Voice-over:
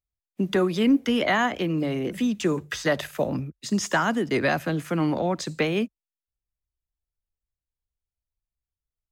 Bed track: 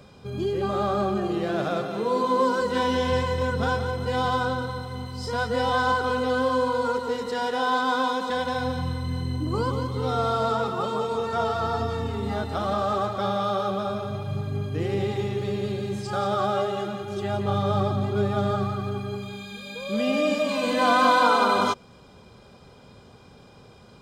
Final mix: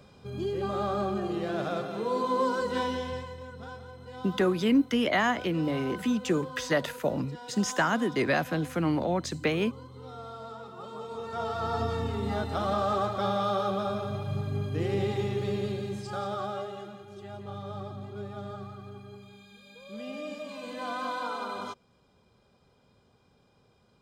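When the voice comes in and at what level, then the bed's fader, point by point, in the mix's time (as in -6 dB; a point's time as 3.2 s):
3.85 s, -3.0 dB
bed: 2.79 s -5 dB
3.43 s -18 dB
10.62 s -18 dB
11.84 s -2.5 dB
15.56 s -2.5 dB
17.16 s -15 dB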